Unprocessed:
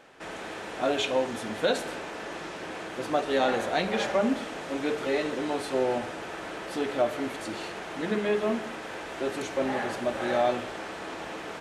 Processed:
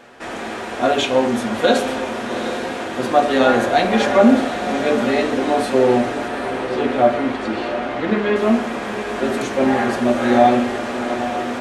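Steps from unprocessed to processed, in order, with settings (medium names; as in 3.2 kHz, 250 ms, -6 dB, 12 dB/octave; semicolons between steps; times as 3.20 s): 6.28–8.36 s: low-pass 3.8 kHz 12 dB/octave; echo that smears into a reverb 795 ms, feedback 48%, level -9.5 dB; reverberation RT60 0.40 s, pre-delay 4 ms, DRR 1.5 dB; trim +7.5 dB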